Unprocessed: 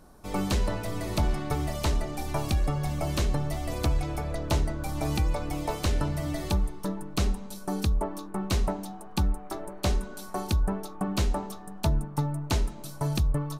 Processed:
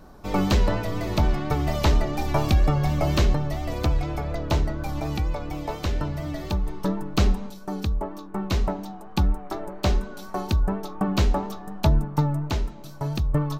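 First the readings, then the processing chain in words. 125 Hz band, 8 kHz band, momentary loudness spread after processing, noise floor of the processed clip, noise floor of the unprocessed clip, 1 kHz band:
+4.5 dB, -2.0 dB, 9 LU, -40 dBFS, -42 dBFS, +4.5 dB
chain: random-step tremolo 1.2 Hz, depth 55%; peaking EQ 9.8 kHz -14 dB 0.8 oct; vibrato 4.2 Hz 32 cents; trim +7 dB

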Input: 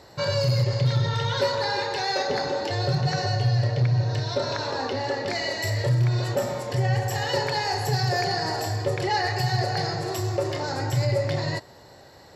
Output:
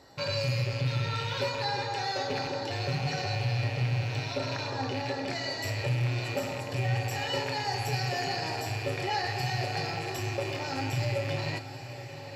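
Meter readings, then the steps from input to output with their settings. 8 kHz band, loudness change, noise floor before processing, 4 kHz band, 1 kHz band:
-5.5 dB, -6.0 dB, -49 dBFS, -5.0 dB, -5.5 dB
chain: rattle on loud lows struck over -34 dBFS, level -22 dBFS; feedback comb 270 Hz, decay 0.37 s, harmonics odd, mix 80%; on a send: echo that smears into a reverb 920 ms, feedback 62%, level -12 dB; on the sum: trim +6 dB

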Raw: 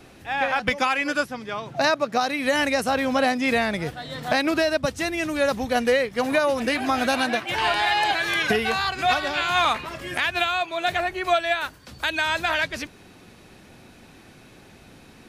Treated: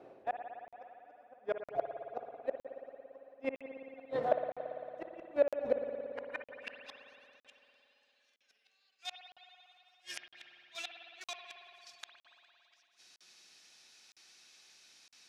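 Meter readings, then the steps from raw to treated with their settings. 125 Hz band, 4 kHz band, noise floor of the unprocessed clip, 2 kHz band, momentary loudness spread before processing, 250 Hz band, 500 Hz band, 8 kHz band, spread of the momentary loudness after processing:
-25.5 dB, -23.5 dB, -49 dBFS, -27.0 dB, 7 LU, -24.5 dB, -13.0 dB, -20.0 dB, 25 LU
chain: hum notches 50/100/150/200/250 Hz; gate -40 dBFS, range -14 dB; dynamic bell 2.7 kHz, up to +5 dB, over -44 dBFS, Q 6; reverse; compression 8:1, threshold -34 dBFS, peak gain reduction 18 dB; reverse; inverted gate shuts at -28 dBFS, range -42 dB; in parallel at +1 dB: Schmitt trigger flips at -45.5 dBFS; on the sum: band-pass sweep 560 Hz -> 5.5 kHz, 5.87–7.07 s; spring tank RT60 3.1 s, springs 56 ms, chirp 55 ms, DRR 4 dB; crackling interface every 0.96 s, samples 2048, zero, from 0.68 s; trim +15.5 dB

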